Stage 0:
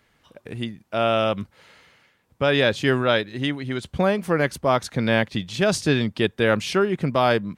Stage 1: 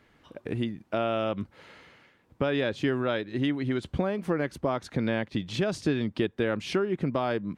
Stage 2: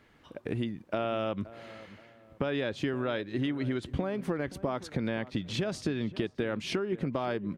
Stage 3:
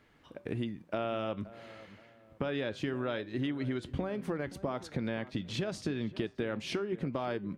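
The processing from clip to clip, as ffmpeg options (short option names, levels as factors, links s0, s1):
-af "highshelf=f=4900:g=-10.5,acompressor=threshold=0.0355:ratio=4,equalizer=f=310:w=1.9:g=5.5,volume=1.19"
-filter_complex "[0:a]acompressor=threshold=0.0447:ratio=6,asplit=2[s0][s1];[s1]adelay=525,lowpass=f=1700:p=1,volume=0.141,asplit=2[s2][s3];[s3]adelay=525,lowpass=f=1700:p=1,volume=0.36,asplit=2[s4][s5];[s5]adelay=525,lowpass=f=1700:p=1,volume=0.36[s6];[s0][s2][s4][s6]amix=inputs=4:normalize=0"
-af "flanger=delay=6.6:depth=2.4:regen=-85:speed=0.55:shape=triangular,volume=1.19"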